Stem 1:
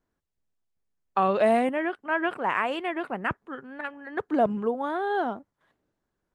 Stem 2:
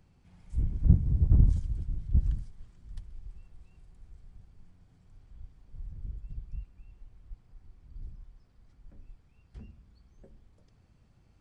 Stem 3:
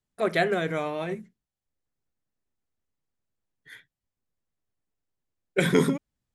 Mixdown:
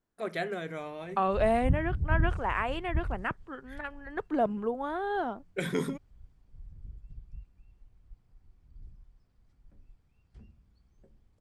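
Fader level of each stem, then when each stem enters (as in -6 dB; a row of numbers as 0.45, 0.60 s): -4.5, -6.0, -9.5 dB; 0.00, 0.80, 0.00 s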